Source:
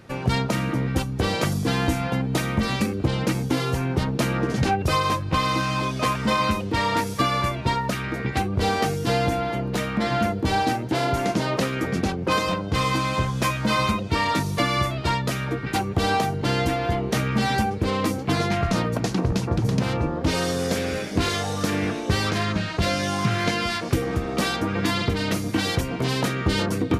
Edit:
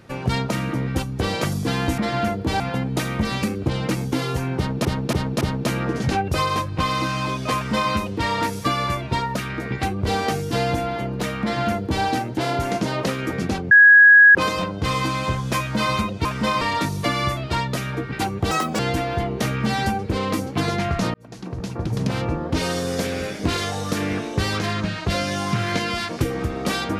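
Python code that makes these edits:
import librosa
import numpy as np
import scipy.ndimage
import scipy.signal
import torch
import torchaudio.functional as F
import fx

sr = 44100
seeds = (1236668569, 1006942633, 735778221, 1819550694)

y = fx.edit(x, sr, fx.repeat(start_s=3.95, length_s=0.28, count=4),
    fx.duplicate(start_s=6.09, length_s=0.36, to_s=14.15),
    fx.duplicate(start_s=9.96, length_s=0.62, to_s=1.98),
    fx.insert_tone(at_s=12.25, length_s=0.64, hz=1660.0, db=-6.5),
    fx.speed_span(start_s=16.05, length_s=0.46, speed=1.64),
    fx.fade_in_span(start_s=18.86, length_s=0.99), tone=tone)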